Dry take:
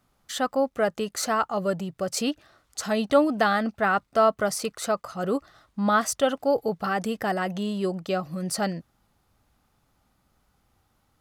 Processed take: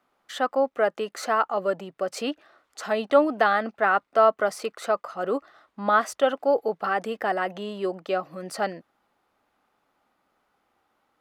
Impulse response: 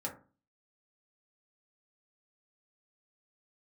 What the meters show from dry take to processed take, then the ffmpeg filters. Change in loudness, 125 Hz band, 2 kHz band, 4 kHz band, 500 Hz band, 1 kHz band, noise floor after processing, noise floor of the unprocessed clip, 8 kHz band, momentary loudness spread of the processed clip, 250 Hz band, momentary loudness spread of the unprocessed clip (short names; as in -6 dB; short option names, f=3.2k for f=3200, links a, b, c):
+0.5 dB, n/a, +1.5 dB, -3.5 dB, +1.5 dB, +2.0 dB, -73 dBFS, -70 dBFS, -9.0 dB, 11 LU, -5.0 dB, 8 LU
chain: -filter_complex "[0:a]acrossover=split=270 3200:gain=0.0708 1 0.251[a][b][c];[a][b][c]amix=inputs=3:normalize=0,volume=2dB"